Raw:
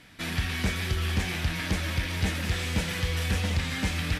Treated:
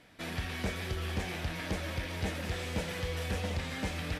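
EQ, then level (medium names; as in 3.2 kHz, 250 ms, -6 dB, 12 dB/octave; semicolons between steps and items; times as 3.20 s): peaking EQ 560 Hz +9 dB 1.6 oct; -8.5 dB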